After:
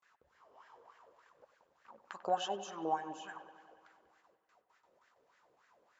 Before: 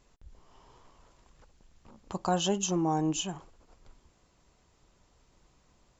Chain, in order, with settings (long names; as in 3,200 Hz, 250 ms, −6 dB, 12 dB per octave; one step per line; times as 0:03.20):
noise gate with hold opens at −55 dBFS
high-pass filter 60 Hz
high-shelf EQ 2,200 Hz +11 dB
in parallel at +3 dB: downward compressor, threshold −36 dBFS, peak gain reduction 17 dB
on the sum: LFO wah 3.4 Hz 470–1,700 Hz, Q 5.4
on a send: delay with a low-pass on its return 95 ms, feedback 72%, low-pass 3,400 Hz, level −14 dB